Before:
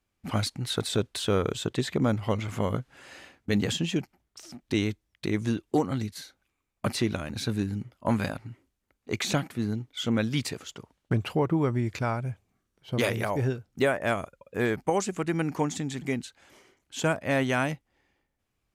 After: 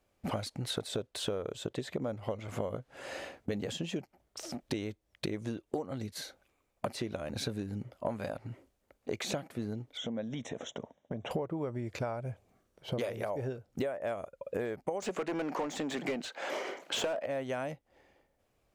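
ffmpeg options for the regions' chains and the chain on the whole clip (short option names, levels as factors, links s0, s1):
-filter_complex "[0:a]asettb=1/sr,asplit=3[s0][s1][s2];[s0]atrim=end=9.974[s3];[s1]atrim=start=9.97:end=11.31,asetpts=PTS-STARTPTS,afade=t=in:d=0.004:c=qsin,afade=t=out:st=1.336:d=0.004:c=qsin,highpass=120,equalizer=f=230:t=q:w=4:g=5,equalizer=f=370:t=q:w=4:g=-4,equalizer=f=650:t=q:w=4:g=3,equalizer=f=1300:t=q:w=4:g=-8,equalizer=f=2600:t=q:w=4:g=-8,lowpass=f=6000:w=0.5412,lowpass=f=6000:w=1.3066,acompressor=threshold=0.01:ratio=4:attack=3.2:release=140:knee=1:detection=peak,asuperstop=centerf=4600:order=8:qfactor=2.6[s4];[s2]atrim=start=11.306[s5];[s3][s4]acrossfade=d=0.004:c1=hsin:c2=qsin[s6];[s6][s5]acrossfade=d=0.004:c1=qsin:c2=hsin,asettb=1/sr,asplit=3[s7][s8][s9];[s7]atrim=end=15.024[s10];[s8]atrim=start=15.02:end=17.26,asetpts=PTS-STARTPTS,afade=t=in:d=0.004:c=qsin,afade=t=out:st=2.236:d=0.004:c=qsin,highpass=f=160:w=0.5412,highpass=f=160:w=1.3066,equalizer=f=9500:w=5.6:g=-7,asplit=2[s11][s12];[s12]highpass=f=720:p=1,volume=25.1,asoftclip=type=tanh:threshold=0.251[s13];[s11][s13]amix=inputs=2:normalize=0,lowpass=f=2400:p=1,volume=0.501[s14];[s9]atrim=start=17.256[s15];[s10][s14]acrossfade=d=0.004:c1=hsin:c2=qsin[s16];[s16][s15]acrossfade=d=0.004:c1=qsin:c2=hsin,equalizer=f=570:w=1.4:g=11.5,acompressor=threshold=0.0178:ratio=10,volume=1.33"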